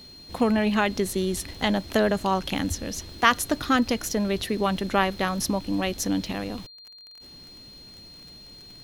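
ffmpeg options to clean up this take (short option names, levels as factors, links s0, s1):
-af "adeclick=t=4,bandreject=f=4200:w=30"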